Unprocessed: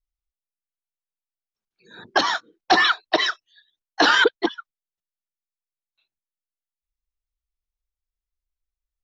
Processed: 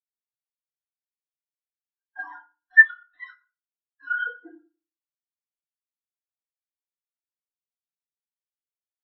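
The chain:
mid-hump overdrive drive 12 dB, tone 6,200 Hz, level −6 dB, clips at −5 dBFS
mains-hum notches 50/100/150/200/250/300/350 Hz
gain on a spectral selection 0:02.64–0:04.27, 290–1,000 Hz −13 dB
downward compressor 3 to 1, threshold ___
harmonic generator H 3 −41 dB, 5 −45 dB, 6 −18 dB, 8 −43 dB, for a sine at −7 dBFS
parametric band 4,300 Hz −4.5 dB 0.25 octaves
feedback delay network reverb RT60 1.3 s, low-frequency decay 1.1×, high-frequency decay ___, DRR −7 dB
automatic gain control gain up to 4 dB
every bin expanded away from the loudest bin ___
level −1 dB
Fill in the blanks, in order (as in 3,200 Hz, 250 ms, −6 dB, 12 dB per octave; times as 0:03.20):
−15 dBFS, 0.75×, 4 to 1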